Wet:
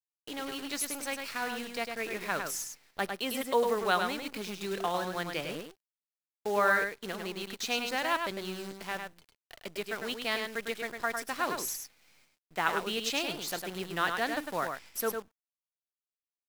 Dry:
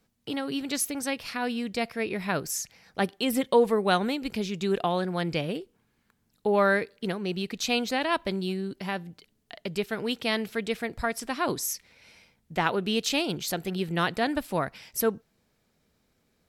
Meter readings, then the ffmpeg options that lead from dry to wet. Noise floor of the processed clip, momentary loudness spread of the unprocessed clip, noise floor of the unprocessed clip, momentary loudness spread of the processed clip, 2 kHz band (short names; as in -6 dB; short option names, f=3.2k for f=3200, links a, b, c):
under -85 dBFS, 9 LU, -72 dBFS, 11 LU, -1.0 dB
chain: -filter_complex "[0:a]highpass=f=390:p=1,agate=range=-33dB:threshold=-53dB:ratio=3:detection=peak,adynamicequalizer=threshold=0.00891:dfrequency=1400:dqfactor=1.1:tfrequency=1400:tqfactor=1.1:attack=5:release=100:ratio=0.375:range=2.5:mode=boostabove:tftype=bell,acrusher=bits=7:dc=4:mix=0:aa=0.000001,asplit=2[a][b];[b]aecho=0:1:103:0.531[c];[a][c]amix=inputs=2:normalize=0,volume=-5.5dB"